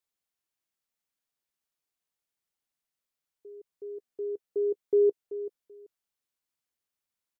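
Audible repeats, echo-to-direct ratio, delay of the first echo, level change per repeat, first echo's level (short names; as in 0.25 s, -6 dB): 2, -13.5 dB, 0.384 s, -14.5 dB, -13.5 dB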